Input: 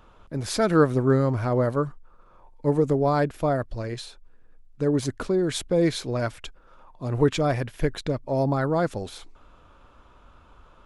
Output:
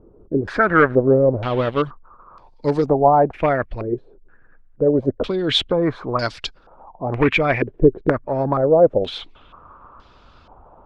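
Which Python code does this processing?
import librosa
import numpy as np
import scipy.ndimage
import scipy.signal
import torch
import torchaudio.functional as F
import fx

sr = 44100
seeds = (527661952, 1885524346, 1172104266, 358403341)

y = fx.backlash(x, sr, play_db=-31.5, at=(0.62, 1.82))
y = fx.hpss(y, sr, part='percussive', gain_db=7)
y = np.clip(y, -10.0 ** (-10.5 / 20.0), 10.0 ** (-10.5 / 20.0))
y = fx.filter_held_lowpass(y, sr, hz=2.1, low_hz=390.0, high_hz=4700.0)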